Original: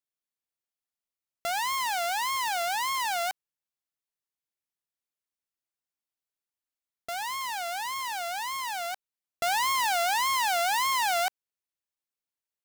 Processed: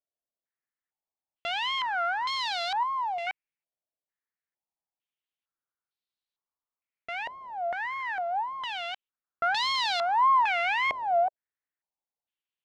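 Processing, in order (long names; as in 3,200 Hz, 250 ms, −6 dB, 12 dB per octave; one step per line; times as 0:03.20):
0:02.83–0:03.27: phaser with its sweep stopped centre 600 Hz, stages 4
low-pass on a step sequencer 2.2 Hz 640–4,000 Hz
level −4 dB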